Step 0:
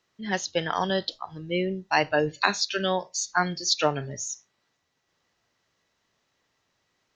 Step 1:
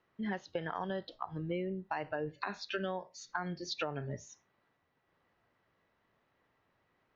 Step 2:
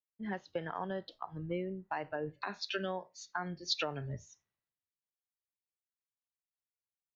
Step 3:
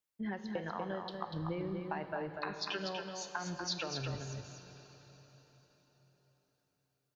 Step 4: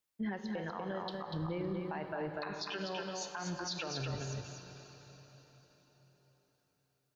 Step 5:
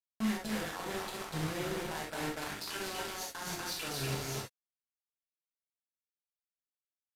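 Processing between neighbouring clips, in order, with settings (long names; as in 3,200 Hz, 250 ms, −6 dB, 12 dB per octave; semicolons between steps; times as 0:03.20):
low-pass filter 1,900 Hz 12 dB per octave; brickwall limiter −16.5 dBFS, peak gain reduction 11 dB; downward compressor 6 to 1, threshold −35 dBFS, peak gain reduction 12.5 dB; level +1 dB
multiband upward and downward expander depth 100%; level −1.5 dB
downward compressor, threshold −41 dBFS, peak gain reduction 12.5 dB; on a send: single-tap delay 242 ms −5 dB; on the sum: dense smooth reverb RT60 4.7 s, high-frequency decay 0.9×, DRR 9 dB; level +5 dB
brickwall limiter −32 dBFS, peak gain reduction 10 dB; echo through a band-pass that steps 140 ms, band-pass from 400 Hz, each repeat 1.4 octaves, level −10 dB; level +2.5 dB
bit-depth reduction 6 bits, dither none; reverb whose tail is shaped and stops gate 90 ms flat, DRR −2.5 dB; downsampling to 32,000 Hz; level −4 dB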